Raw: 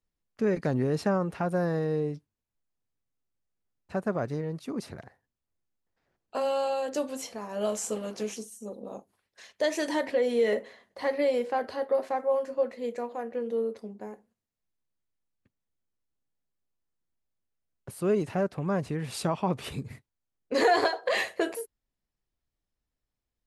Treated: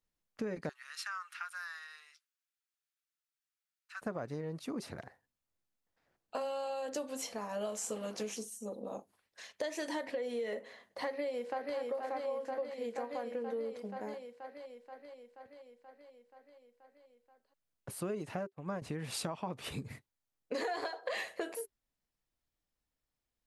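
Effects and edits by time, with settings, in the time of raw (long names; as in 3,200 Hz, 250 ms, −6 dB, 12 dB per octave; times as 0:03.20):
0:00.69–0:04.02: elliptic high-pass filter 1,300 Hz, stop band 80 dB
0:11.08–0:11.77: delay throw 480 ms, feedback 70%, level −4.5 dB
0:18.39–0:18.82: expander for the loud parts 2.5 to 1, over −48 dBFS
whole clip: low-shelf EQ 210 Hz −5.5 dB; notch filter 390 Hz, Q 12; downward compressor, threshold −35 dBFS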